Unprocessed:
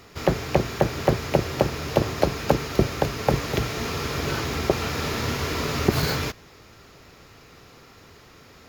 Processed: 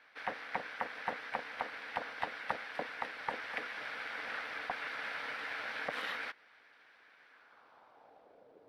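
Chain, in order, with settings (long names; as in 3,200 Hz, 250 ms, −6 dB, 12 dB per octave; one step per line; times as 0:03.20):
formants moved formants −4 semitones
ring modulation 370 Hz
band-pass filter sweep 1,800 Hz → 460 Hz, 0:07.26–0:08.55
harmonic and percussive parts rebalanced harmonic −5 dB
level +1 dB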